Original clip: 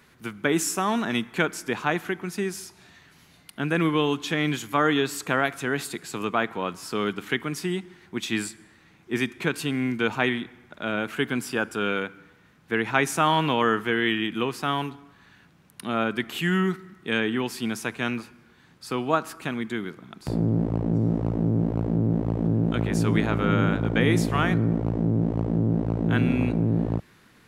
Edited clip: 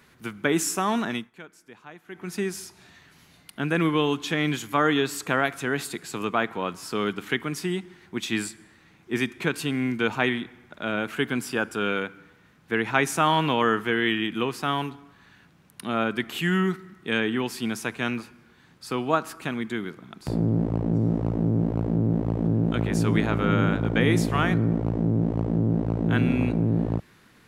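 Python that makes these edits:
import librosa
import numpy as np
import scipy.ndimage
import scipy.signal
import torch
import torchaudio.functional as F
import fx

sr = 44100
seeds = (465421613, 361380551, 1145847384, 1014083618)

y = fx.edit(x, sr, fx.fade_down_up(start_s=1.04, length_s=1.3, db=-20.0, fade_s=0.27), tone=tone)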